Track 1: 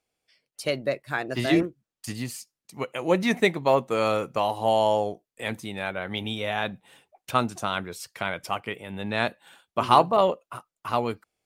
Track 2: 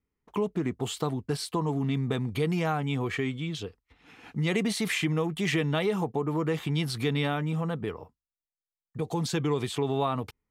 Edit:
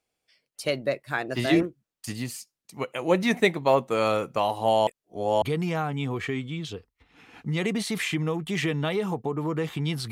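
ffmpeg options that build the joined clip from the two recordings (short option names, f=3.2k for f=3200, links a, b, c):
-filter_complex "[0:a]apad=whole_dur=10.11,atrim=end=10.11,asplit=2[a][b];[a]atrim=end=4.872[c];[b]atrim=start=4.868:end=5.422,asetpts=PTS-STARTPTS,areverse[d];[1:a]atrim=start=2.318:end=7.01[e];[c][d]acrossfade=d=0.004:c1=hsin:c2=hsin[f];[f][e]acrossfade=d=0.004:c1=hsin:c2=hsin"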